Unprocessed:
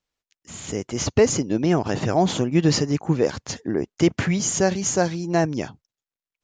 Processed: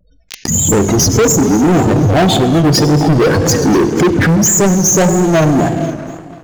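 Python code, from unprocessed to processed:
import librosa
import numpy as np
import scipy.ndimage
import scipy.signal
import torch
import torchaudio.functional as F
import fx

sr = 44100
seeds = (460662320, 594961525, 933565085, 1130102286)

p1 = (np.mod(10.0 ** (19.5 / 20.0) * x + 1.0, 2.0) - 1.0) / 10.0 ** (19.5 / 20.0)
p2 = x + (p1 * 10.0 ** (-8.0 / 20.0))
p3 = fx.chorus_voices(p2, sr, voices=4, hz=0.84, base_ms=21, depth_ms=2.4, mix_pct=25)
p4 = fx.spec_gate(p3, sr, threshold_db=-10, keep='strong')
p5 = fx.rev_plate(p4, sr, seeds[0], rt60_s=2.3, hf_ratio=0.7, predelay_ms=0, drr_db=10.0)
p6 = fx.rider(p5, sr, range_db=10, speed_s=0.5)
p7 = fx.leveller(p6, sr, passes=5)
p8 = p7 + fx.echo_feedback(p7, sr, ms=244, feedback_pct=58, wet_db=-17.0, dry=0)
p9 = fx.vibrato(p8, sr, rate_hz=1.8, depth_cents=77.0)
p10 = fx.pre_swell(p9, sr, db_per_s=85.0)
y = p10 * 10.0 ** (3.5 / 20.0)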